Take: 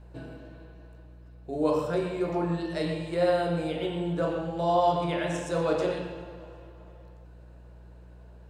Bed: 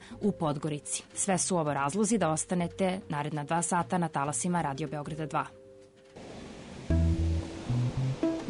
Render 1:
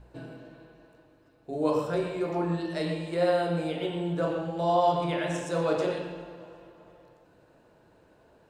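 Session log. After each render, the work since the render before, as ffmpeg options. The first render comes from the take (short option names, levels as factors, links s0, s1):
-af "bandreject=f=60:t=h:w=4,bandreject=f=120:t=h:w=4,bandreject=f=180:t=h:w=4,bandreject=f=240:t=h:w=4,bandreject=f=300:t=h:w=4,bandreject=f=360:t=h:w=4,bandreject=f=420:t=h:w=4,bandreject=f=480:t=h:w=4,bandreject=f=540:t=h:w=4,bandreject=f=600:t=h:w=4"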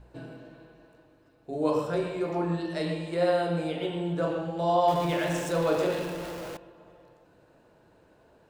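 -filter_complex "[0:a]asettb=1/sr,asplit=3[s0][s1][s2];[s0]atrim=end=4.884[s3];[s1]atrim=start=4.88:end=6.57,asetpts=PTS-STARTPTS,afade=t=in:d=0.004:c=qsin,afade=t=out:st=1.686:d=0.004:c=qsin,aeval=exprs='val(0)+0.5*0.0178*sgn(val(0))':c=same[s4];[s2]atrim=start=6.566[s5];[s3][s4]acrossfade=d=0.004:c1=hsin:c2=qsin[s6];[s6][s5]acrossfade=d=0.004:c1=qsin:c2=hsin"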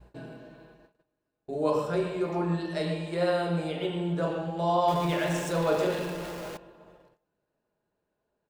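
-af "agate=range=0.0891:threshold=0.002:ratio=16:detection=peak,aecho=1:1:4.9:0.31"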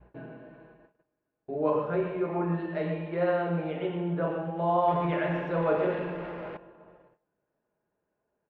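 -af "lowpass=f=2400:w=0.5412,lowpass=f=2400:w=1.3066,lowshelf=f=72:g=-6.5"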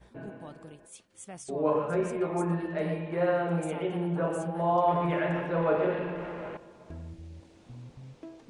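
-filter_complex "[1:a]volume=0.15[s0];[0:a][s0]amix=inputs=2:normalize=0"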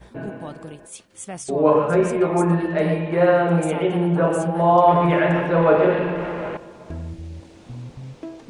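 -af "volume=3.35"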